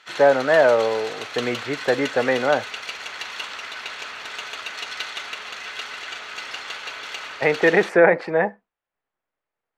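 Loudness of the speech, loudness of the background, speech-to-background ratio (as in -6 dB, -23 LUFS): -20.0 LUFS, -31.5 LUFS, 11.5 dB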